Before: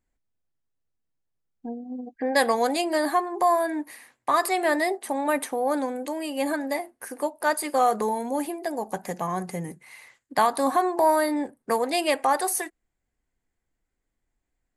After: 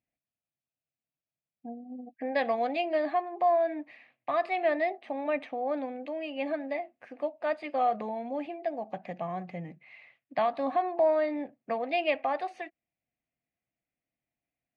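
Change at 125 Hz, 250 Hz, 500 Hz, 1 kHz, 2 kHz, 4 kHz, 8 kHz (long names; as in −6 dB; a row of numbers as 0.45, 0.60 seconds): −6.5 dB, −8.0 dB, −3.5 dB, −6.5 dB, −7.0 dB, −10.0 dB, below −40 dB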